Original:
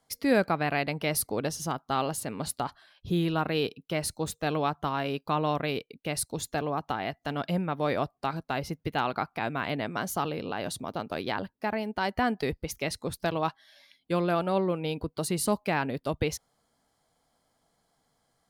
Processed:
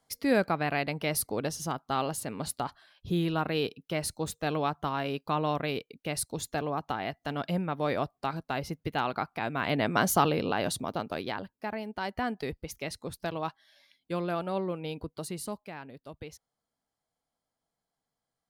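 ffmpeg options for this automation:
ffmpeg -i in.wav -af "volume=7dB,afade=type=in:start_time=9.52:duration=0.52:silence=0.375837,afade=type=out:start_time=10.04:duration=1.37:silence=0.251189,afade=type=out:start_time=15.05:duration=0.66:silence=0.316228" out.wav

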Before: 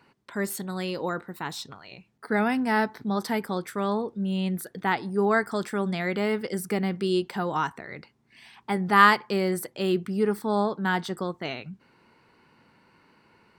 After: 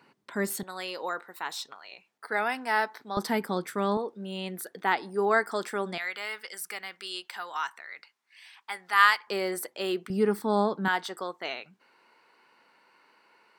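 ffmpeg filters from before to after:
ffmpeg -i in.wav -af "asetnsamples=nb_out_samples=441:pad=0,asendcmd='0.63 highpass f 610;3.17 highpass f 160;3.97 highpass f 360;5.98 highpass f 1300;9.27 highpass f 440;10.1 highpass f 160;10.88 highpass f 520',highpass=160" out.wav

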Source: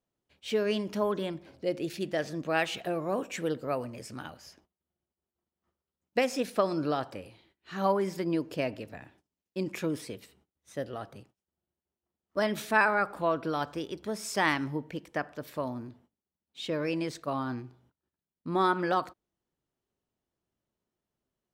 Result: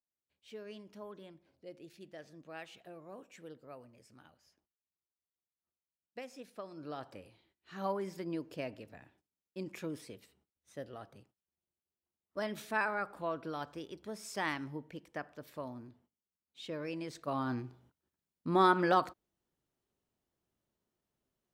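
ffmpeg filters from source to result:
ffmpeg -i in.wav -af "afade=type=in:start_time=6.74:duration=0.42:silence=0.316228,afade=type=in:start_time=17.06:duration=0.56:silence=0.354813" out.wav

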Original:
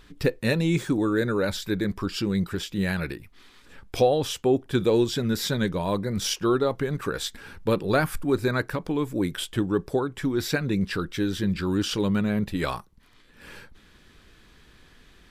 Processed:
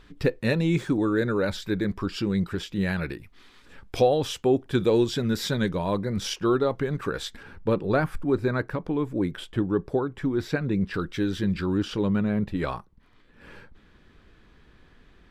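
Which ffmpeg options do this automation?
ffmpeg -i in.wav -af "asetnsamples=nb_out_samples=441:pad=0,asendcmd='3.13 lowpass f 6100;5.77 lowpass f 3600;7.43 lowpass f 1500;10.94 lowpass f 3900;11.66 lowpass f 1600',lowpass=frequency=3700:poles=1" out.wav

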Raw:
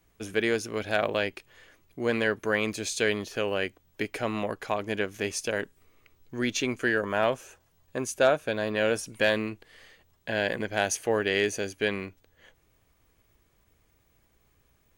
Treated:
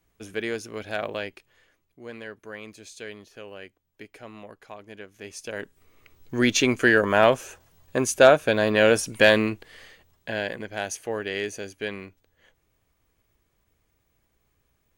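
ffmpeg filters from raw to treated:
ffmpeg -i in.wav -af "volume=17dB,afade=type=out:start_time=1.12:duration=0.88:silence=0.334965,afade=type=in:start_time=5.15:duration=0.4:silence=0.375837,afade=type=in:start_time=5.55:duration=0.81:silence=0.251189,afade=type=out:start_time=9.47:duration=1.08:silence=0.266073" out.wav

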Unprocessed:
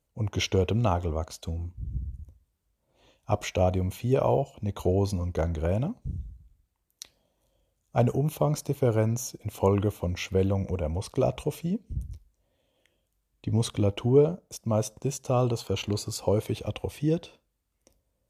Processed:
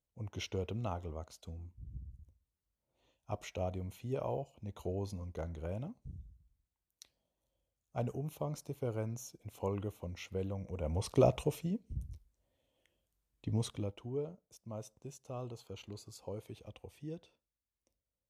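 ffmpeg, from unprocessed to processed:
ffmpeg -i in.wav -af "volume=-1dB,afade=type=in:start_time=10.71:duration=0.44:silence=0.237137,afade=type=out:start_time=11.15:duration=0.57:silence=0.473151,afade=type=out:start_time=13.49:duration=0.48:silence=0.281838" out.wav

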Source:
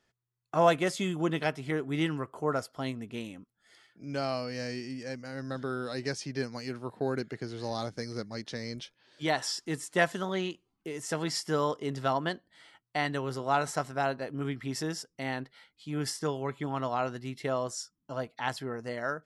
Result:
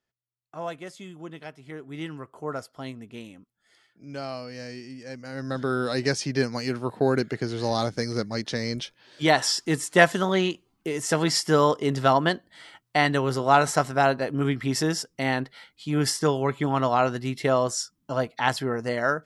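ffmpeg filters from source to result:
ffmpeg -i in.wav -af "volume=9dB,afade=type=in:start_time=1.52:duration=1.04:silence=0.375837,afade=type=in:start_time=5.04:duration=0.77:silence=0.281838" out.wav

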